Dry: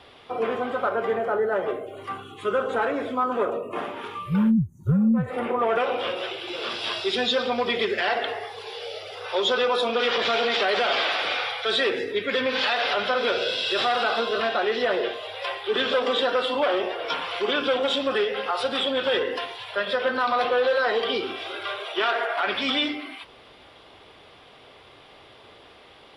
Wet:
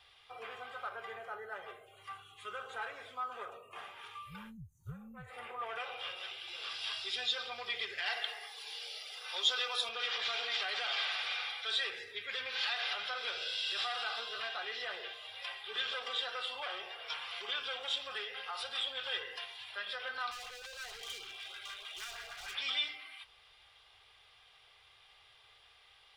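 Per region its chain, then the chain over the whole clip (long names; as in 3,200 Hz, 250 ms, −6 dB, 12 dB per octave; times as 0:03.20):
0:08.06–0:09.89: Butterworth high-pass 170 Hz + high-shelf EQ 3,400 Hz +8.5 dB
0:20.31–0:22.55: hard clipping −28.5 dBFS + auto-filter notch saw up 6.5 Hz 440–2,200 Hz
whole clip: guitar amp tone stack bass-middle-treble 10-0-10; comb filter 2.5 ms, depth 32%; level −7 dB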